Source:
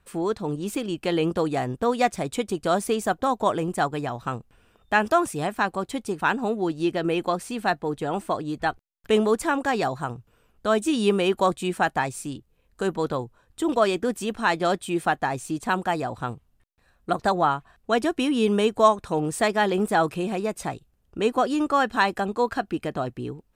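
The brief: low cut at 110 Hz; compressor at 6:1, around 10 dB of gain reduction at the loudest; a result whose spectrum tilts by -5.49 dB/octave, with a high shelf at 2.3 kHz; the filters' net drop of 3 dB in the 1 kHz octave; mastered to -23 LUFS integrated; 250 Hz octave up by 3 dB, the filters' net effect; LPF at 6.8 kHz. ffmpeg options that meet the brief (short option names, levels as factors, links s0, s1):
-af "highpass=110,lowpass=6800,equalizer=f=250:t=o:g=4.5,equalizer=f=1000:t=o:g=-3.5,highshelf=f=2300:g=-4.5,acompressor=threshold=0.0501:ratio=6,volume=2.66"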